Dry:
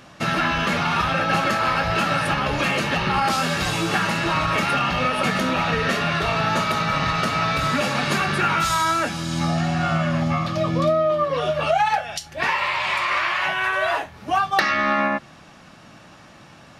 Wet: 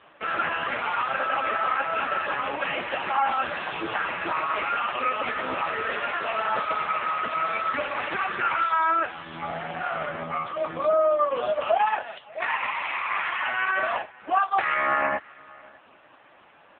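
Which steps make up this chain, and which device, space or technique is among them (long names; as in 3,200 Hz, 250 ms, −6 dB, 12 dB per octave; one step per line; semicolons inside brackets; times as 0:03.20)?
0:09.02–0:10.93: dynamic equaliser 310 Hz, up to −6 dB, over −37 dBFS, Q 1.2
satellite phone (band-pass filter 390–3,200 Hz; single-tap delay 599 ms −24 dB; AMR narrowband 5.15 kbit/s 8,000 Hz)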